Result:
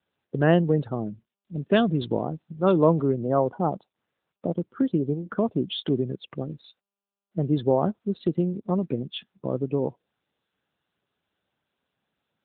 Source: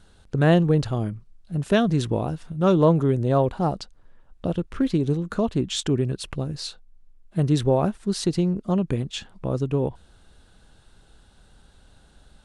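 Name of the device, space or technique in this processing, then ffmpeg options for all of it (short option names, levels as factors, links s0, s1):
mobile call with aggressive noise cancelling: -filter_complex "[0:a]asplit=3[s0][s1][s2];[s0]afade=t=out:st=1.06:d=0.02[s3];[s1]adynamicequalizer=threshold=0.00447:dfrequency=4100:dqfactor=1.6:tfrequency=4100:tqfactor=1.6:attack=5:release=100:ratio=0.375:range=2.5:mode=boostabove:tftype=bell,afade=t=in:st=1.06:d=0.02,afade=t=out:st=3.21:d=0.02[s4];[s2]afade=t=in:st=3.21:d=0.02[s5];[s3][s4][s5]amix=inputs=3:normalize=0,highpass=170,afftdn=nr=26:nf=-35" -ar 8000 -c:a libopencore_amrnb -b:a 10200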